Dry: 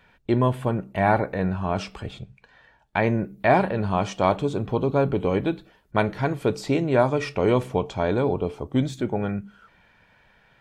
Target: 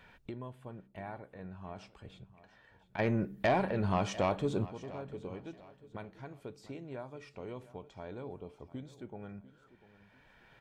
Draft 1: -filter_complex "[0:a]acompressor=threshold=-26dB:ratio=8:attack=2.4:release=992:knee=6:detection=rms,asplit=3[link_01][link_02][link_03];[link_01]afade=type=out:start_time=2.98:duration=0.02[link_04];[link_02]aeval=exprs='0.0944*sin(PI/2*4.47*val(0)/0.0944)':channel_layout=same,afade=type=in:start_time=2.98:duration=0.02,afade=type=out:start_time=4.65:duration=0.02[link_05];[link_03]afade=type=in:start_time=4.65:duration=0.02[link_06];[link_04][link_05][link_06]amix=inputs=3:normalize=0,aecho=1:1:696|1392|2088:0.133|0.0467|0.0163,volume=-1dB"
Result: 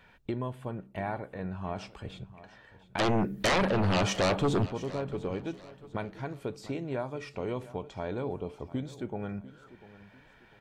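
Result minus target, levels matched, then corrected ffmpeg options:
downward compressor: peak gain reduction −9.5 dB
-filter_complex "[0:a]acompressor=threshold=-37dB:ratio=8:attack=2.4:release=992:knee=6:detection=rms,asplit=3[link_01][link_02][link_03];[link_01]afade=type=out:start_time=2.98:duration=0.02[link_04];[link_02]aeval=exprs='0.0944*sin(PI/2*4.47*val(0)/0.0944)':channel_layout=same,afade=type=in:start_time=2.98:duration=0.02,afade=type=out:start_time=4.65:duration=0.02[link_05];[link_03]afade=type=in:start_time=4.65:duration=0.02[link_06];[link_04][link_05][link_06]amix=inputs=3:normalize=0,aecho=1:1:696|1392|2088:0.133|0.0467|0.0163,volume=-1dB"

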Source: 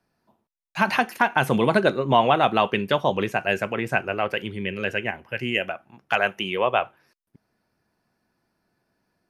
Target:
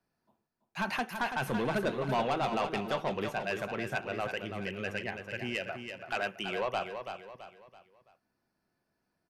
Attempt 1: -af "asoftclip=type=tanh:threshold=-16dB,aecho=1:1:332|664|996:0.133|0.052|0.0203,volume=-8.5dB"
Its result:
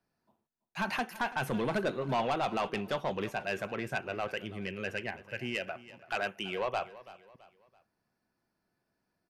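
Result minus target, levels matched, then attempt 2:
echo-to-direct −10 dB
-af "asoftclip=type=tanh:threshold=-16dB,aecho=1:1:332|664|996|1328:0.422|0.164|0.0641|0.025,volume=-8.5dB"

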